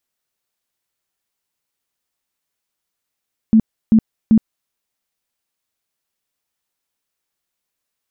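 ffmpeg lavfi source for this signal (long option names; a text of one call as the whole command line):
ffmpeg -f lavfi -i "aevalsrc='0.473*sin(2*PI*221*mod(t,0.39))*lt(mod(t,0.39),15/221)':duration=1.17:sample_rate=44100" out.wav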